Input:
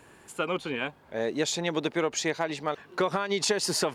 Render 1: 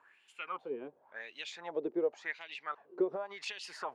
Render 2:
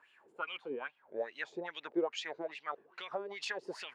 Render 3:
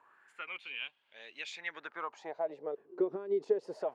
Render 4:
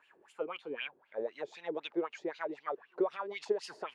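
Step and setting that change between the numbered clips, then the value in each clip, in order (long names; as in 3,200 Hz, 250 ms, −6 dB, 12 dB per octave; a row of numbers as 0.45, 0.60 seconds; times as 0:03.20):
LFO wah, speed: 0.91, 2.4, 0.24, 3.9 Hertz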